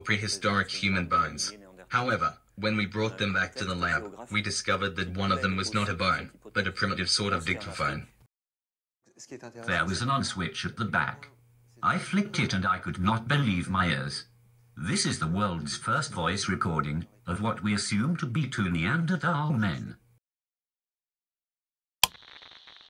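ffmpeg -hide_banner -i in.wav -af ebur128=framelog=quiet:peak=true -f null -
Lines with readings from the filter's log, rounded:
Integrated loudness:
  I:         -28.4 LUFS
  Threshold: -38.9 LUFS
Loudness range:
  LRA:         3.5 LU
  Threshold: -49.4 LUFS
  LRA low:   -31.6 LUFS
  LRA high:  -28.2 LUFS
True peak:
  Peak:       -2.2 dBFS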